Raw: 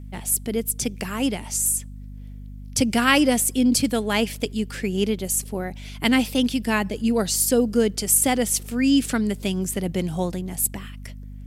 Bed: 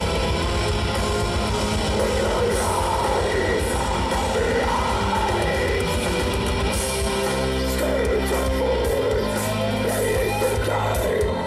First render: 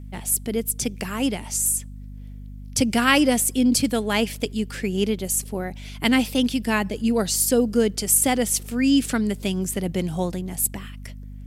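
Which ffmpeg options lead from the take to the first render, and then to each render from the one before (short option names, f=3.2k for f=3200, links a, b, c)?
-af anull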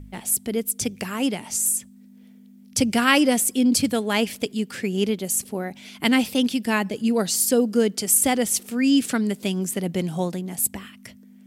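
-af "bandreject=f=50:t=h:w=4,bandreject=f=100:t=h:w=4,bandreject=f=150:t=h:w=4"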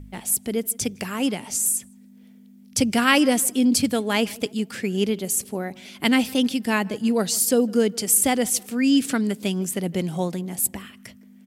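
-filter_complex "[0:a]asplit=2[a][b];[b]adelay=158,lowpass=f=2.1k:p=1,volume=-22.5dB,asplit=2[c][d];[d]adelay=158,lowpass=f=2.1k:p=1,volume=0.42,asplit=2[e][f];[f]adelay=158,lowpass=f=2.1k:p=1,volume=0.42[g];[a][c][e][g]amix=inputs=4:normalize=0"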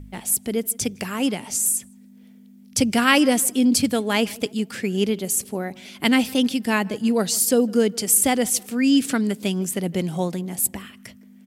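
-af "volume=1dB"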